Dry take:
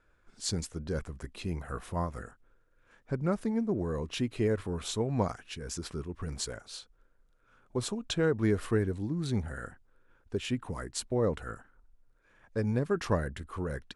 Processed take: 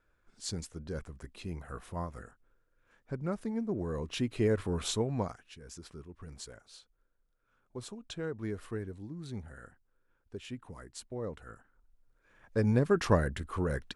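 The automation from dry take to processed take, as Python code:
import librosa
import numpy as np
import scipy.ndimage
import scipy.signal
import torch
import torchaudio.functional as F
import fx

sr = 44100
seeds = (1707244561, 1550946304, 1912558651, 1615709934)

y = fx.gain(x, sr, db=fx.line((3.4, -5.0), (4.88, 2.5), (5.48, -10.0), (11.39, -10.0), (12.67, 3.0)))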